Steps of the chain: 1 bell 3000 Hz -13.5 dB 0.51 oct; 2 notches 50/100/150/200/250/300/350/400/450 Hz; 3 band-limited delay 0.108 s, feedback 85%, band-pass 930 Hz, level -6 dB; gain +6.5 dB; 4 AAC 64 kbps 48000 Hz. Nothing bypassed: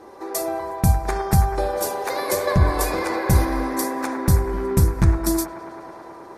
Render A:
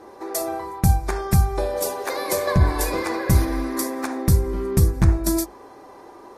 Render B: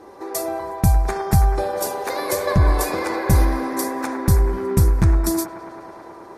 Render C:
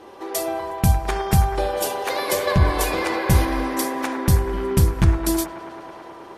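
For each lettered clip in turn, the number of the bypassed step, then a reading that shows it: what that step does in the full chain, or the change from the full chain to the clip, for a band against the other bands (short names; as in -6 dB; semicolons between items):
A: 3, momentary loudness spread change -3 LU; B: 2, loudness change +1.0 LU; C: 1, 4 kHz band +4.0 dB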